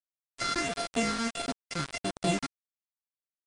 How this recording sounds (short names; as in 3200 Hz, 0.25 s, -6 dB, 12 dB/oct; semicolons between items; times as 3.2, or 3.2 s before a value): a buzz of ramps at a fixed pitch in blocks of 64 samples; phasing stages 6, 1.5 Hz, lowest notch 690–2300 Hz; a quantiser's noise floor 6-bit, dither none; MP2